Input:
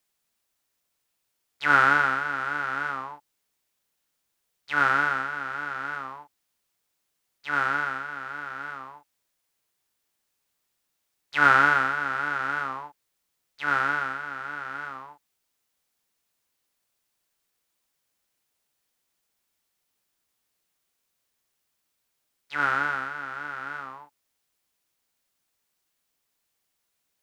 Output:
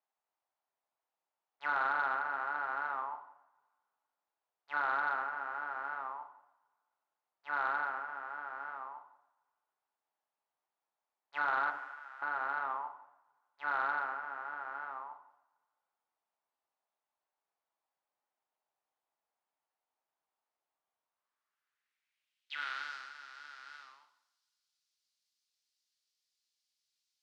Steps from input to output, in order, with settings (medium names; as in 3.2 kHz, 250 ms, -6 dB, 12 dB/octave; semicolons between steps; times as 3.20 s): peak limiter -13.5 dBFS, peak gain reduction 9.5 dB; 11.70–12.22 s: differentiator; two-slope reverb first 0.8 s, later 2.2 s, from -26 dB, DRR 7 dB; band-pass sweep 830 Hz -> 4.7 kHz, 21.01–22.92 s; saturation -20 dBFS, distortion -23 dB